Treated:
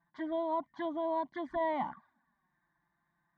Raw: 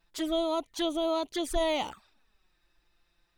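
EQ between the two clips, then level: Butterworth band-stop 1.3 kHz, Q 5.6; cabinet simulation 140–2500 Hz, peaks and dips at 160 Hz +8 dB, 240 Hz +7 dB, 1.1 kHz +5 dB, 1.9 kHz +5 dB; static phaser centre 1.1 kHz, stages 4; 0.0 dB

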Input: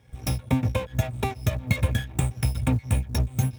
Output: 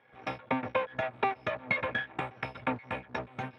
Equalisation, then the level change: band-pass 410–7400 Hz; distance through air 390 m; peaking EQ 1.5 kHz +8 dB 1.8 oct; 0.0 dB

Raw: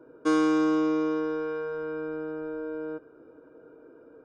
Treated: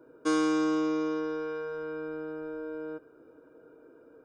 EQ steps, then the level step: treble shelf 3.4 kHz +8 dB; -3.5 dB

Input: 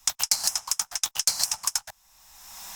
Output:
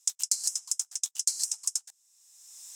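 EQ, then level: band-pass filter 7.8 kHz, Q 2.3; 0.0 dB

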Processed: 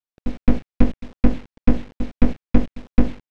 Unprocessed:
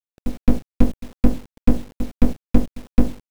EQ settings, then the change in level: dynamic bell 2.1 kHz, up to +7 dB, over -47 dBFS, Q 0.95; distance through air 110 m; 0.0 dB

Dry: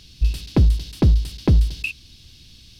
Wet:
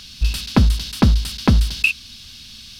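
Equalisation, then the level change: FFT filter 160 Hz 0 dB, 230 Hz +9 dB, 320 Hz -3 dB, 1.4 kHz +15 dB, 1.9 kHz +10 dB; 0.0 dB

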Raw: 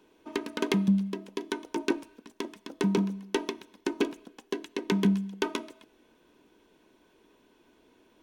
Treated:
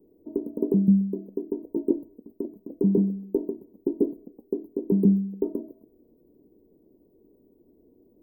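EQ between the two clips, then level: inverse Chebyshev band-stop 2–5.5 kHz, stop band 80 dB; +5.0 dB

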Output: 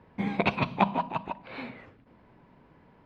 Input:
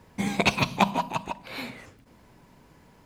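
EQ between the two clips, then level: distance through air 390 m; bass shelf 100 Hz -7 dB; 0.0 dB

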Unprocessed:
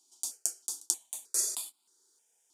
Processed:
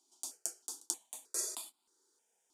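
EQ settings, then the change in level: treble shelf 2.6 kHz -9.5 dB; +1.5 dB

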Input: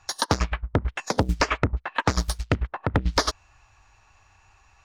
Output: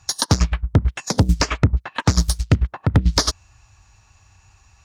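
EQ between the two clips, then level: high-pass 91 Hz 6 dB/octave; tone controls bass +14 dB, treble +14 dB; treble shelf 8.3 kHz -7 dB; -1.0 dB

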